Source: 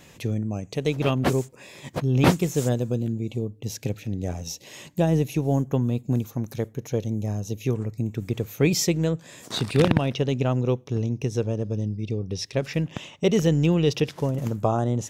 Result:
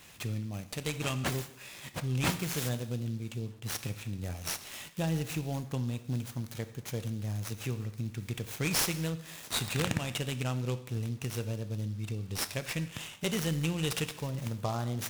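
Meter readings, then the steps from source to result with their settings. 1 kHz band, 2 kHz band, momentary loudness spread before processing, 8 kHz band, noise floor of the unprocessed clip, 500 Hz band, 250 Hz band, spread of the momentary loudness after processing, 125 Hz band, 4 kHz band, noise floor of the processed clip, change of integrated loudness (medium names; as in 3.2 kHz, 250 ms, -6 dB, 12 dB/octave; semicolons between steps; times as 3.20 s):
-8.5 dB, -3.0 dB, 11 LU, -2.5 dB, -51 dBFS, -14.0 dB, -11.5 dB, 8 LU, -9.0 dB, -3.0 dB, -51 dBFS, -9.0 dB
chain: amplifier tone stack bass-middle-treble 5-5-5; in parallel at +2 dB: compression, threshold -36 dBFS, peak gain reduction 9 dB; on the sum: word length cut 10-bit, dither none; gated-style reverb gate 280 ms falling, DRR 10 dB; delay time shaken by noise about 4.2 kHz, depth 0.034 ms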